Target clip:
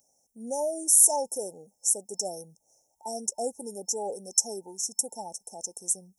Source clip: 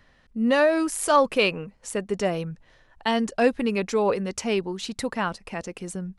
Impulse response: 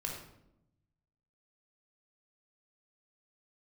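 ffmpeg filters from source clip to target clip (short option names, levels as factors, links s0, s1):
-af "aderivative,apsyclip=8.91,afftfilt=real='re*(1-between(b*sr/4096,900,5300))':imag='im*(1-between(b*sr/4096,900,5300))':win_size=4096:overlap=0.75,volume=0.447"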